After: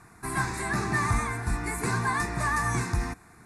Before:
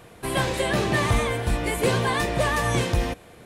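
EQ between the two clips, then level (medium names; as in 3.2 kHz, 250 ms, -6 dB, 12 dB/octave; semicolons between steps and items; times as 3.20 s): low-pass 11 kHz 24 dB/octave; bass shelf 220 Hz -4.5 dB; static phaser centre 1.3 kHz, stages 4; 0.0 dB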